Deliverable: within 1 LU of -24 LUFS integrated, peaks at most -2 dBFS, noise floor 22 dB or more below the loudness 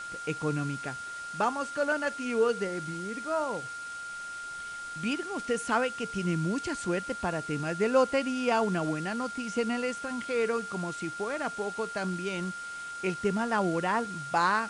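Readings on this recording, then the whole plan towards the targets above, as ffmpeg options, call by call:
steady tone 1400 Hz; tone level -37 dBFS; noise floor -40 dBFS; noise floor target -53 dBFS; loudness -31.0 LUFS; peak -12.0 dBFS; loudness target -24.0 LUFS
-> -af "bandreject=f=1.4k:w=30"
-af "afftdn=nr=13:nf=-40"
-af "volume=7dB"

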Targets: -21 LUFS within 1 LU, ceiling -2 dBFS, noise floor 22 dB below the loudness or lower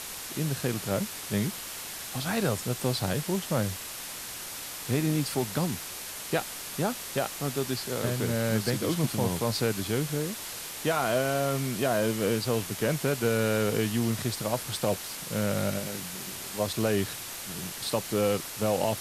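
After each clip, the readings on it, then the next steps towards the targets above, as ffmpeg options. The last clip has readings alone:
noise floor -39 dBFS; noise floor target -52 dBFS; loudness -29.5 LUFS; peak -13.0 dBFS; loudness target -21.0 LUFS
-> -af "afftdn=nr=13:nf=-39"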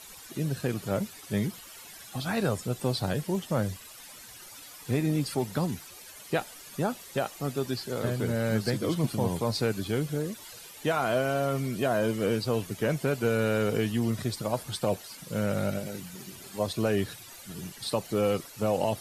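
noise floor -48 dBFS; noise floor target -52 dBFS
-> -af "afftdn=nr=6:nf=-48"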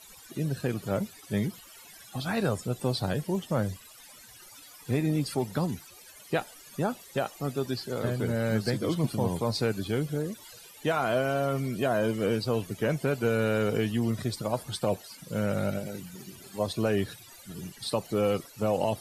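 noise floor -51 dBFS; noise floor target -52 dBFS
-> -af "afftdn=nr=6:nf=-51"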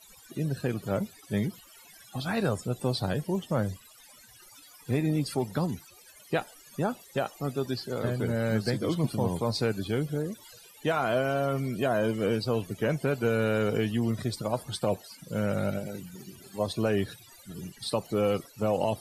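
noise floor -54 dBFS; loudness -30.0 LUFS; peak -13.5 dBFS; loudness target -21.0 LUFS
-> -af "volume=9dB"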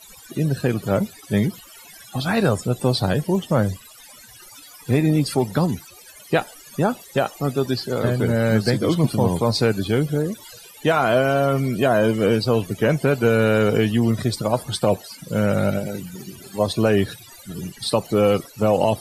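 loudness -21.0 LUFS; peak -4.5 dBFS; noise floor -45 dBFS

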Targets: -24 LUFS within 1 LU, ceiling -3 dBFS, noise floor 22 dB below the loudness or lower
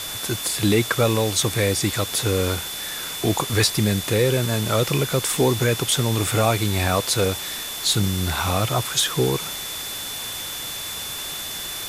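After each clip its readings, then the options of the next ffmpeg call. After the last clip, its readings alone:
steady tone 3500 Hz; tone level -33 dBFS; noise floor -31 dBFS; noise floor target -44 dBFS; loudness -22.0 LUFS; peak -6.0 dBFS; loudness target -24.0 LUFS
-> -af "bandreject=f=3.5k:w=30"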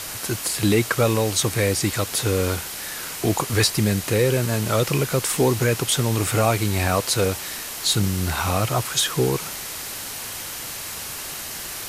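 steady tone none; noise floor -33 dBFS; noise floor target -45 dBFS
-> -af "afftdn=nr=12:nf=-33"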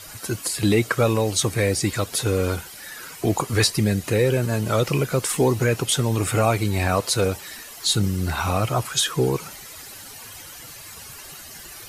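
noise floor -40 dBFS; noise floor target -44 dBFS
-> -af "afftdn=nr=6:nf=-40"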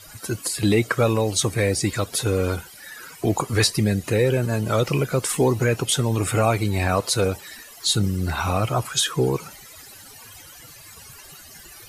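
noise floor -44 dBFS; loudness -22.0 LUFS; peak -6.5 dBFS; loudness target -24.0 LUFS
-> -af "volume=-2dB"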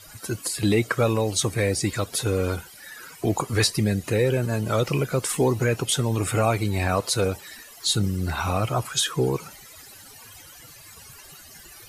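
loudness -24.0 LUFS; peak -8.5 dBFS; noise floor -46 dBFS

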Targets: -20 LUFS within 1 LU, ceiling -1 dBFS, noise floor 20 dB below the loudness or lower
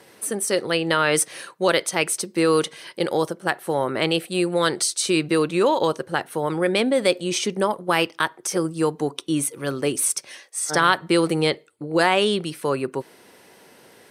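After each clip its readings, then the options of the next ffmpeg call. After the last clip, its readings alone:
loudness -22.5 LUFS; peak -4.0 dBFS; loudness target -20.0 LUFS
-> -af "volume=2.5dB"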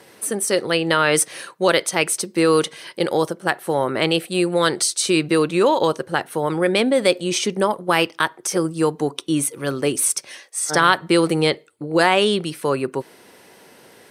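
loudness -20.0 LUFS; peak -1.5 dBFS; noise floor -49 dBFS

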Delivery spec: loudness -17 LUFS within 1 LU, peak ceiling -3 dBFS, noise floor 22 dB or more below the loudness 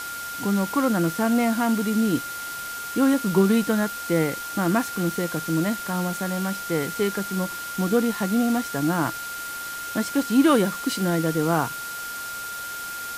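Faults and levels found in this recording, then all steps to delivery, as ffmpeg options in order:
steady tone 1400 Hz; tone level -32 dBFS; noise floor -33 dBFS; noise floor target -46 dBFS; loudness -24.0 LUFS; peak -6.5 dBFS; loudness target -17.0 LUFS
-> -af "bandreject=f=1.4k:w=30"
-af "afftdn=nr=13:nf=-33"
-af "volume=7dB,alimiter=limit=-3dB:level=0:latency=1"

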